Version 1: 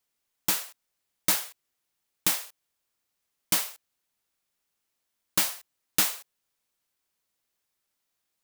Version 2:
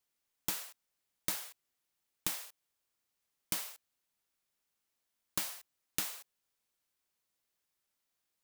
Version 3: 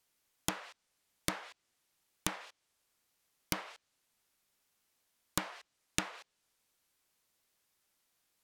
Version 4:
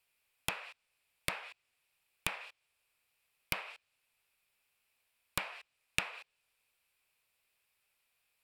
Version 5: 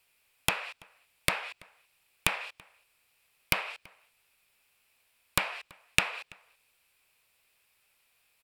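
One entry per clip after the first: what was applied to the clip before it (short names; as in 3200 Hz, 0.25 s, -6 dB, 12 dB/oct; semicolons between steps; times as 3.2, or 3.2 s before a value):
compressor 6:1, threshold -28 dBFS, peak gain reduction 10.5 dB; gain -4 dB
treble ducked by the level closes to 1700 Hz, closed at -35.5 dBFS; gain +7 dB
thirty-one-band EQ 200 Hz -11 dB, 315 Hz -11 dB, 2500 Hz +12 dB, 6300 Hz -10 dB; gain -1.5 dB
outdoor echo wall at 57 m, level -25 dB; gain +8.5 dB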